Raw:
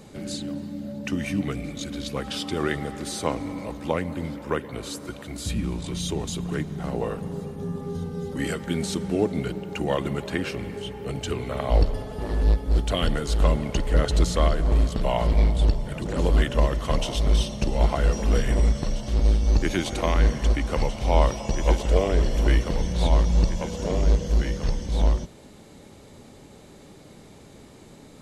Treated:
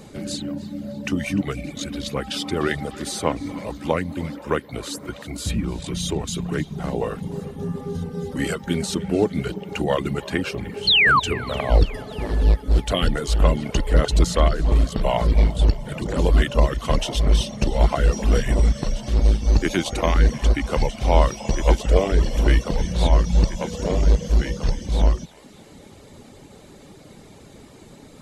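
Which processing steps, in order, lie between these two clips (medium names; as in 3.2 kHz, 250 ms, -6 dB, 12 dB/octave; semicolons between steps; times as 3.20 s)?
reverb removal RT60 0.6 s; painted sound fall, 10.87–11.20 s, 960–4500 Hz -19 dBFS; on a send: band-passed feedback delay 300 ms, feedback 63%, band-pass 2.6 kHz, level -16.5 dB; on the sum: trim +4 dB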